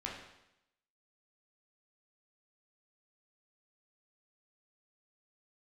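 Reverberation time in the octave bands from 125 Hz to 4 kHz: 0.85, 0.85, 0.85, 0.85, 0.85, 0.85 s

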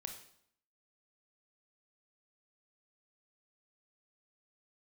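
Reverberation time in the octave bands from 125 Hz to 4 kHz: 0.65, 0.75, 0.65, 0.65, 0.60, 0.60 s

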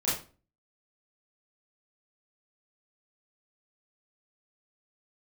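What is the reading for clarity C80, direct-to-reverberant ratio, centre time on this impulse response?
10.0 dB, -10.0 dB, 46 ms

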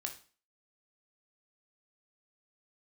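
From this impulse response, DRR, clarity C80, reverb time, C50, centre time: 3.0 dB, 16.5 dB, 0.40 s, 11.0 dB, 13 ms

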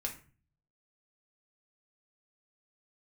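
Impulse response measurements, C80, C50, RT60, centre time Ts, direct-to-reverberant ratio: 16.0 dB, 10.5 dB, 0.40 s, 15 ms, 0.0 dB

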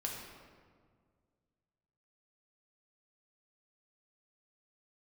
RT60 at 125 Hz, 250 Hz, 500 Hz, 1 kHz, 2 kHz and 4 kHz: 2.6, 2.3, 2.0, 1.7, 1.3, 1.1 s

